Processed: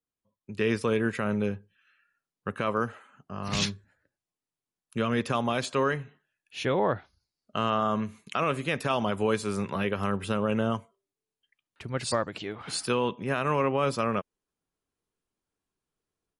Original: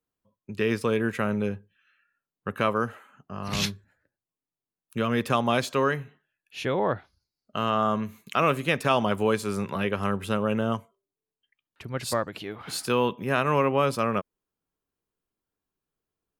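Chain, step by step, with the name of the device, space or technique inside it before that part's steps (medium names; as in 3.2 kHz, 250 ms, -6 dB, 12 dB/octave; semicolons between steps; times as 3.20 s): low-bitrate web radio (level rider gain up to 8.5 dB; peak limiter -7 dBFS, peak gain reduction 4.5 dB; trim -7.5 dB; MP3 48 kbps 48 kHz)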